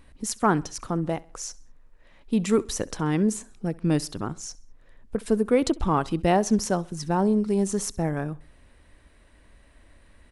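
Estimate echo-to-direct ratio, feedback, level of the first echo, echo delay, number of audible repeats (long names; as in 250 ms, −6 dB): −21.5 dB, 42%, −22.5 dB, 66 ms, 2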